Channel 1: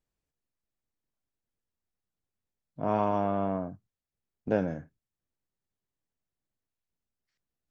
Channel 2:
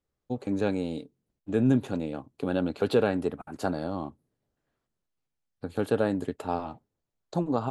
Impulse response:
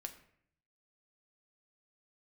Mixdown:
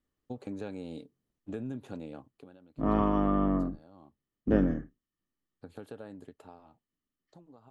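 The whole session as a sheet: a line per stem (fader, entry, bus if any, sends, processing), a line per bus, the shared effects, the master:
-7.0 dB, 0.00 s, no send, octaver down 2 oct, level +4 dB; small resonant body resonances 270/1200/1800/3000 Hz, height 15 dB, ringing for 20 ms
2.23 s -4.5 dB -> 2.59 s -16.5 dB -> 3.59 s -16.5 dB -> 4.02 s -10 dB -> 6.11 s -10 dB -> 6.9 s -21.5 dB, 0.00 s, no send, compressor 5:1, threshold -31 dBFS, peak gain reduction 12.5 dB; auto duck -8 dB, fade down 0.85 s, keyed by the first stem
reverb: off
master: dry

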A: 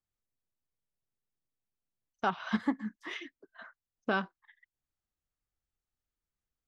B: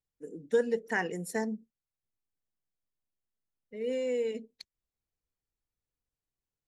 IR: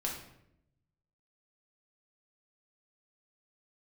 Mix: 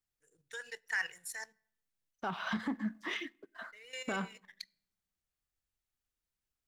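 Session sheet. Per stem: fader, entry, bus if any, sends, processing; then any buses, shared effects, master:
-1.0 dB, 0.00 s, send -22 dB, limiter -28 dBFS, peak gain reduction 10.5 dB
-10.5 dB, 0.00 s, send -20 dB, EQ curve 130 Hz 0 dB, 220 Hz -29 dB, 1500 Hz +12 dB; level quantiser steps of 12 dB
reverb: on, RT60 0.80 s, pre-delay 5 ms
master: sample leveller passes 1

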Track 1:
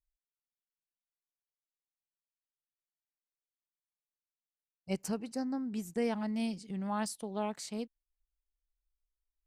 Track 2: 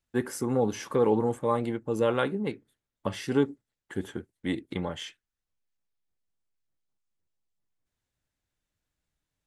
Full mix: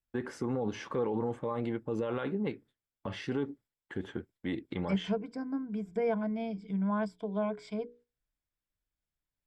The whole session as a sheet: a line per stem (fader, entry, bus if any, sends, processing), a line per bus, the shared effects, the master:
+0.5 dB, 0.00 s, no send, notches 60/120/180/240/300/360/420/480 Hz; treble ducked by the level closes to 1800 Hz, closed at -35 dBFS; ripple EQ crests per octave 1.7, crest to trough 14 dB
-1.5 dB, 0.00 s, no send, LPF 3700 Hz 12 dB/oct; limiter -22.5 dBFS, peak gain reduction 10.5 dB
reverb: off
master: gate -58 dBFS, range -8 dB

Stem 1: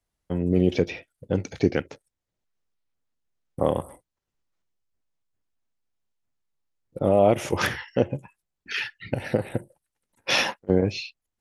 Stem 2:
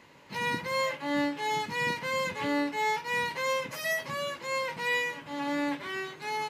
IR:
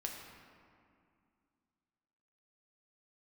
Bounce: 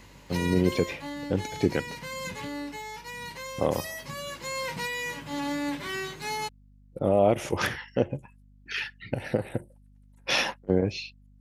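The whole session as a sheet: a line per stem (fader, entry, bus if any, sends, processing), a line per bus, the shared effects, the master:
-3.0 dB, 0.00 s, no send, hum 50 Hz, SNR 25 dB
+1.5 dB, 0.00 s, no send, limiter -26.5 dBFS, peak gain reduction 8.5 dB; tone controls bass +8 dB, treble +9 dB; auto duck -7 dB, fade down 1.30 s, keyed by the first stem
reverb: off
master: dry

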